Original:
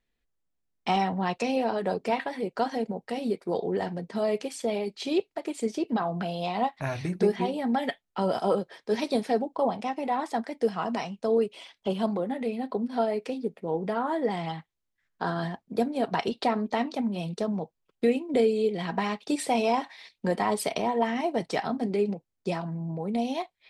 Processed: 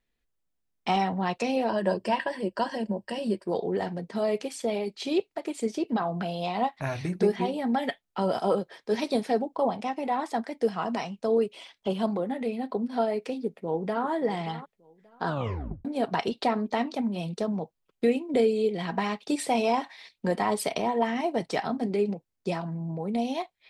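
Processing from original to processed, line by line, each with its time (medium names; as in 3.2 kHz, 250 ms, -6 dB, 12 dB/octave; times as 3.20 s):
1.69–3.48 s: rippled EQ curve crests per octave 1.3, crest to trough 11 dB
13.37–14.07 s: echo throw 580 ms, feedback 20%, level -14.5 dB
15.27 s: tape stop 0.58 s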